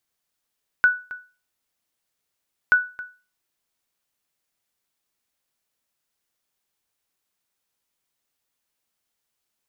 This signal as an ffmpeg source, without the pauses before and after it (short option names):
-f lavfi -i "aevalsrc='0.376*(sin(2*PI*1480*mod(t,1.88))*exp(-6.91*mod(t,1.88)/0.33)+0.126*sin(2*PI*1480*max(mod(t,1.88)-0.27,0))*exp(-6.91*max(mod(t,1.88)-0.27,0)/0.33))':d=3.76:s=44100"